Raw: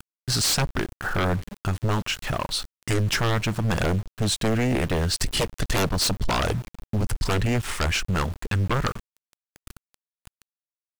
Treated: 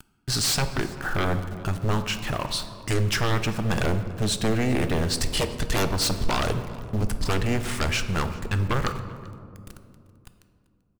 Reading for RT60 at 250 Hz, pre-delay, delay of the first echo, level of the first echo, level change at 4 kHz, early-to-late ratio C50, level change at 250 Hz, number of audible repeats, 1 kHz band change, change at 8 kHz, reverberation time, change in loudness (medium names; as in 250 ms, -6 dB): 3.6 s, 3 ms, 389 ms, -22.5 dB, -1.0 dB, 10.0 dB, -0.5 dB, 1, -1.0 dB, -1.5 dB, 2.6 s, -1.0 dB